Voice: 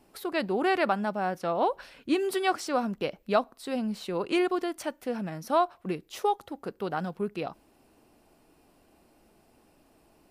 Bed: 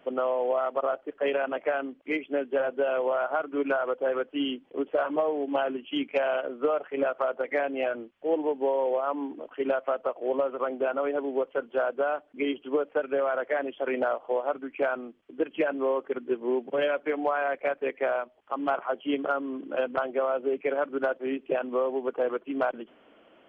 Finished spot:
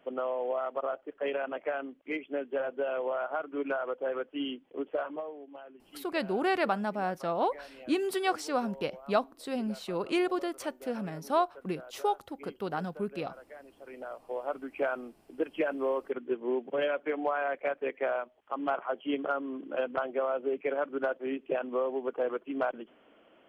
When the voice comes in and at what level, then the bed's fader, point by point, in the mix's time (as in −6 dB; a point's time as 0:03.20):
5.80 s, −2.5 dB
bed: 0:04.95 −5.5 dB
0:05.57 −21 dB
0:13.78 −21 dB
0:14.58 −3.5 dB